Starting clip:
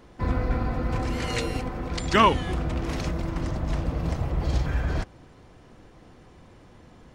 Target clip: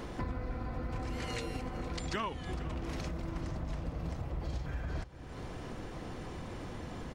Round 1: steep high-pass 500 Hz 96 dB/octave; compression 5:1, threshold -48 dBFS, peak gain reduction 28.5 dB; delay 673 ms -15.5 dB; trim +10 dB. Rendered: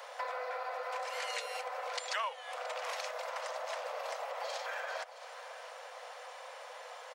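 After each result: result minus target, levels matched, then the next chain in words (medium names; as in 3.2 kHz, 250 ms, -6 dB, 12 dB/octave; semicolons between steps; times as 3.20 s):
echo 214 ms late; 500 Hz band +3.0 dB
steep high-pass 500 Hz 96 dB/octave; compression 5:1, threshold -48 dBFS, peak gain reduction 28.5 dB; delay 459 ms -15.5 dB; trim +10 dB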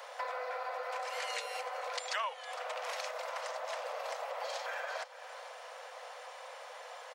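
500 Hz band +3.0 dB
compression 5:1, threshold -48 dBFS, peak gain reduction 29.5 dB; delay 459 ms -15.5 dB; trim +10 dB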